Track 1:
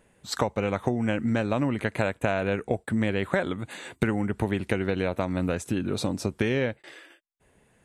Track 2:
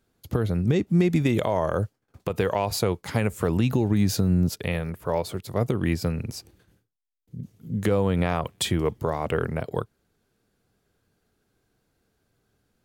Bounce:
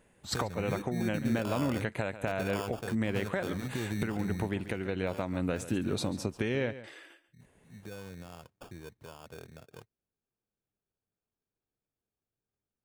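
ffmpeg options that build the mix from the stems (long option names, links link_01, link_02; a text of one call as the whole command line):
ffmpeg -i stem1.wav -i stem2.wav -filter_complex "[0:a]volume=-3dB,asplit=2[link_01][link_02];[link_02]volume=-15dB[link_03];[1:a]acrusher=samples=22:mix=1:aa=0.000001,volume=-12.5dB,afade=type=out:start_time=4.16:duration=0.5:silence=0.316228[link_04];[link_03]aecho=0:1:139:1[link_05];[link_01][link_04][link_05]amix=inputs=3:normalize=0,alimiter=limit=-18.5dB:level=0:latency=1:release=449" out.wav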